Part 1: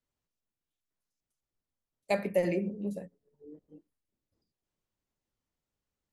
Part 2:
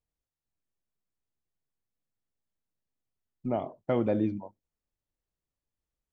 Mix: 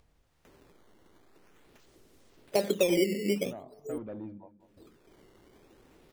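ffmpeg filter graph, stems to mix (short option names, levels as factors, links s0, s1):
-filter_complex "[0:a]equalizer=f=380:w=1.2:g=13.5,acompressor=threshold=0.0398:ratio=3,acrusher=samples=10:mix=1:aa=0.000001:lfo=1:lforange=16:lforate=0.46,adelay=450,volume=1.41,asplit=3[s0][s1][s2];[s0]atrim=end=3.98,asetpts=PTS-STARTPTS,afade=t=out:st=3.976:d=0.004:c=hsin[s3];[s1]atrim=start=3.98:end=4.6,asetpts=PTS-STARTPTS,volume=0[s4];[s2]atrim=start=4.6,asetpts=PTS-STARTPTS,afade=t=in:d=0.004:c=hsin[s5];[s3][s4][s5]concat=n=3:v=0:a=1[s6];[1:a]lowpass=f=2300:p=1,asoftclip=type=tanh:threshold=0.0794,volume=0.266,asplit=2[s7][s8];[s8]volume=0.0891,aecho=0:1:195|390|585:1|0.18|0.0324[s9];[s6][s7][s9]amix=inputs=3:normalize=0,acompressor=mode=upward:threshold=0.01:ratio=2.5"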